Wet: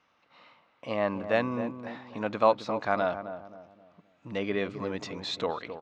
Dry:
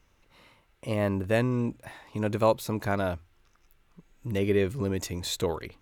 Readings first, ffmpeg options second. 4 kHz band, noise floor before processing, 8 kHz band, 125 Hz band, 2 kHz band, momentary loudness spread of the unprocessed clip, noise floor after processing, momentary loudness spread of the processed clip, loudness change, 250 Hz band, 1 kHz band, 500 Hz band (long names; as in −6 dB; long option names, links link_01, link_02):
−0.5 dB, −66 dBFS, below −10 dB, −11.5 dB, +1.0 dB, 13 LU, −68 dBFS, 15 LU, −2.0 dB, −4.0 dB, +3.5 dB, −1.0 dB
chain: -filter_complex "[0:a]highpass=240,equalizer=frequency=380:width_type=q:width=4:gain=-9,equalizer=frequency=730:width_type=q:width=4:gain=5,equalizer=frequency=1200:width_type=q:width=4:gain=6,lowpass=frequency=4900:width=0.5412,lowpass=frequency=4900:width=1.3066,asplit=2[link_01][link_02];[link_02]adelay=264,lowpass=frequency=890:poles=1,volume=-9dB,asplit=2[link_03][link_04];[link_04]adelay=264,lowpass=frequency=890:poles=1,volume=0.41,asplit=2[link_05][link_06];[link_06]adelay=264,lowpass=frequency=890:poles=1,volume=0.41,asplit=2[link_07][link_08];[link_08]adelay=264,lowpass=frequency=890:poles=1,volume=0.41,asplit=2[link_09][link_10];[link_10]adelay=264,lowpass=frequency=890:poles=1,volume=0.41[link_11];[link_01][link_03][link_05][link_07][link_09][link_11]amix=inputs=6:normalize=0"